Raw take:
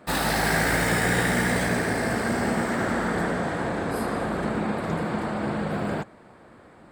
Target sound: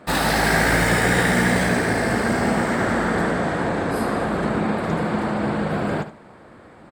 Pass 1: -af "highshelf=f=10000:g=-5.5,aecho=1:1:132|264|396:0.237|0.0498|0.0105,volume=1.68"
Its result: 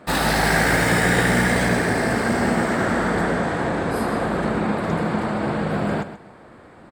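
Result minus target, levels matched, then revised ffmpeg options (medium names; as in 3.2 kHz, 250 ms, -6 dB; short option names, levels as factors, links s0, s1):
echo 61 ms late
-af "highshelf=f=10000:g=-5.5,aecho=1:1:71|142|213:0.237|0.0498|0.0105,volume=1.68"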